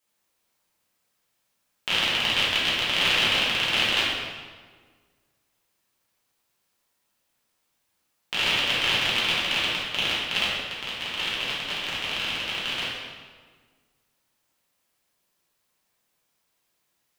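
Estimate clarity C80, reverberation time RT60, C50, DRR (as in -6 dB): 1.5 dB, 1.6 s, -1.0 dB, -8.5 dB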